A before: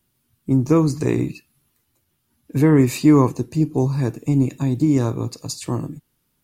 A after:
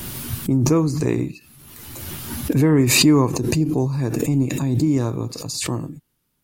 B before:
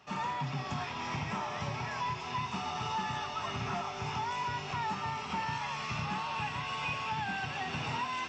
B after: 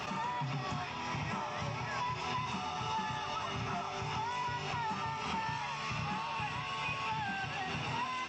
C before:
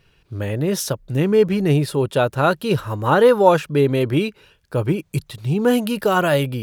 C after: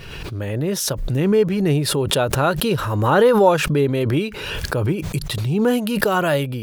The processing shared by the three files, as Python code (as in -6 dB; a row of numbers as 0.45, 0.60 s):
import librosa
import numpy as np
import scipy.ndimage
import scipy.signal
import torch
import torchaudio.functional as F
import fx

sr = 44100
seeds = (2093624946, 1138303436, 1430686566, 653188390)

y = fx.pre_swell(x, sr, db_per_s=31.0)
y = F.gain(torch.from_numpy(y), -2.0).numpy()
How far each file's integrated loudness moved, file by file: -0.5, -1.0, -0.5 LU